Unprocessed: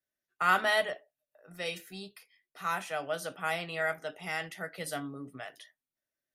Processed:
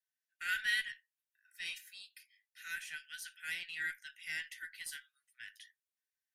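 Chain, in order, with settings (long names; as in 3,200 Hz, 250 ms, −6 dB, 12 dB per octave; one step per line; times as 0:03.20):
Chebyshev high-pass filter 1,500 Hz, order 8
harmonic generator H 8 −34 dB, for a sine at −19 dBFS
level −3 dB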